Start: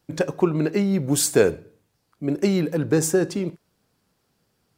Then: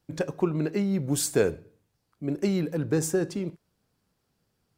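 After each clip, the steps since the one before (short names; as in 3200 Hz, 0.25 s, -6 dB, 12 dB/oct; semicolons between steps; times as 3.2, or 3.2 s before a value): low shelf 130 Hz +6 dB; gain -6.5 dB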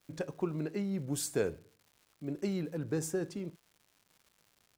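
crackle 240/s -43 dBFS; gain -8.5 dB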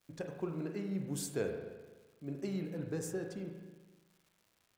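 spring tank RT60 1.3 s, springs 36/42 ms, chirp 60 ms, DRR 3.5 dB; gain -5 dB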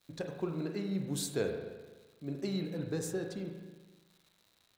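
bell 3900 Hz +12 dB 0.24 oct; gain +2.5 dB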